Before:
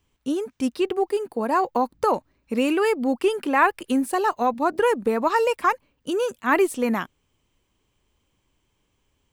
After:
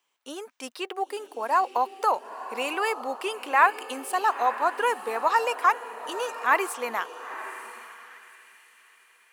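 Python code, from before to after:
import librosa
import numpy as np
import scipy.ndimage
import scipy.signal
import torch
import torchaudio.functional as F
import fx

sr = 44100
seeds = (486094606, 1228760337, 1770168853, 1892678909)

y = fx.echo_diffused(x, sr, ms=934, feedback_pct=43, wet_db=-12.5)
y = fx.filter_sweep_highpass(y, sr, from_hz=770.0, to_hz=2400.0, start_s=7.25, end_s=8.63, q=1.0)
y = y * 10.0 ** (-1.0 / 20.0)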